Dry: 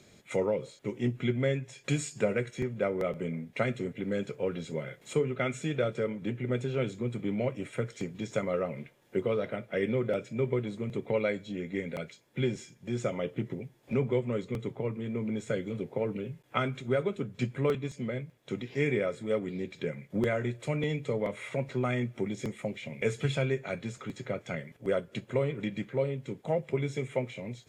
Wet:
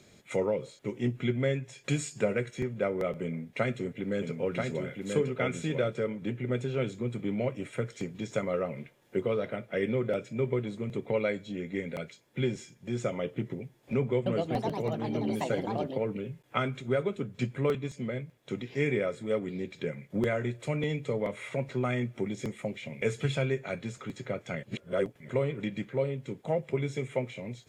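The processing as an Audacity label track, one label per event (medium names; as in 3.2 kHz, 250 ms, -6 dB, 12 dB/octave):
3.230000	5.890000	delay 984 ms -3.5 dB
13.970000	16.260000	ever faster or slower copies 291 ms, each echo +5 st, echoes 2
24.630000	25.290000	reverse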